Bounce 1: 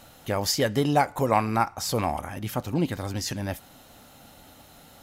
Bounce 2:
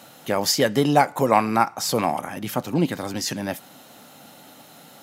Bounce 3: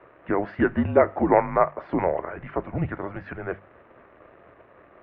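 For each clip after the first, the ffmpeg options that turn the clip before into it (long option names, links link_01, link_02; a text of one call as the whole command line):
ffmpeg -i in.wav -af "highpass=frequency=140:width=0.5412,highpass=frequency=140:width=1.3066,volume=4.5dB" out.wav
ffmpeg -i in.wav -af "acrusher=bits=8:dc=4:mix=0:aa=0.000001,highpass=frequency=330:width_type=q:width=0.5412,highpass=frequency=330:width_type=q:width=1.307,lowpass=frequency=2200:width_type=q:width=0.5176,lowpass=frequency=2200:width_type=q:width=0.7071,lowpass=frequency=2200:width_type=q:width=1.932,afreqshift=-190,bandreject=frequency=50:width_type=h:width=6,bandreject=frequency=100:width_type=h:width=6,bandreject=frequency=150:width_type=h:width=6,bandreject=frequency=200:width_type=h:width=6" out.wav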